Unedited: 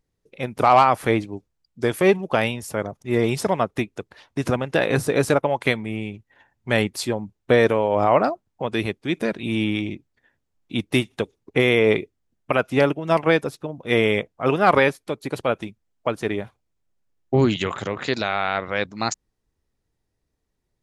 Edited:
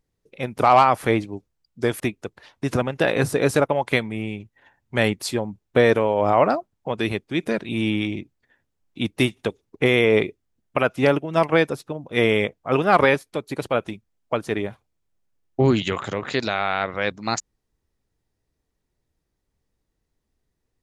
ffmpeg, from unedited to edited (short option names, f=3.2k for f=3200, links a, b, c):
-filter_complex "[0:a]asplit=2[a][b];[a]atrim=end=2.002[c];[b]atrim=start=3.738[d];[c][d]acrossfade=d=0.004:c1=hsin:c2=hsin"